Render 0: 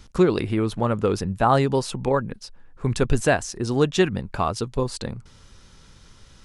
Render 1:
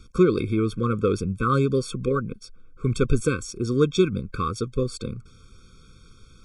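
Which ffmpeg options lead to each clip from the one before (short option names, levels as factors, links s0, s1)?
-af "afftfilt=real='re*eq(mod(floor(b*sr/1024/530),2),0)':imag='im*eq(mod(floor(b*sr/1024/530),2),0)':win_size=1024:overlap=0.75"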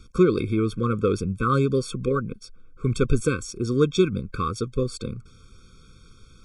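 -af anull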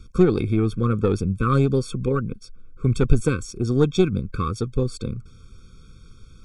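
-af "aeval=exprs='0.501*(cos(1*acos(clip(val(0)/0.501,-1,1)))-cos(1*PI/2))+0.0398*(cos(4*acos(clip(val(0)/0.501,-1,1)))-cos(4*PI/2))+0.00562*(cos(6*acos(clip(val(0)/0.501,-1,1)))-cos(6*PI/2))':c=same,lowshelf=f=240:g=7,volume=0.841"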